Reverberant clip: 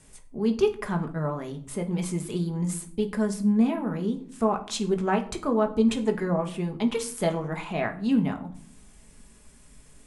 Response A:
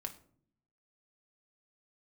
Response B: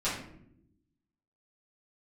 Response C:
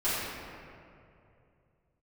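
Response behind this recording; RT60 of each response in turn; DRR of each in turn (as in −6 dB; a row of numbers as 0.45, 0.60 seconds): A; 0.55 s, non-exponential decay, 2.6 s; 3.5, −12.0, −14.5 decibels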